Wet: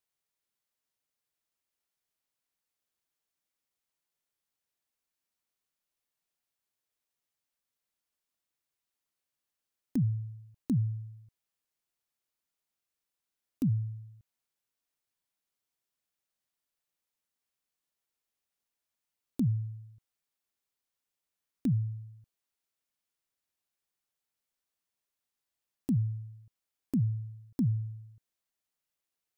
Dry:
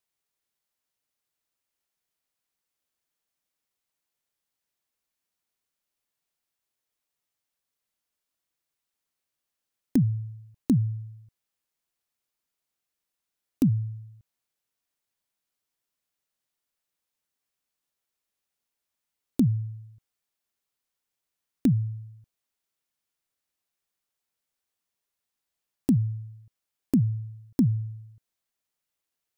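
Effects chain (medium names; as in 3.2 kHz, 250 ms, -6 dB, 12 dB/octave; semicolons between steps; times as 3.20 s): peak limiter -19 dBFS, peak gain reduction 7 dB; trim -3.5 dB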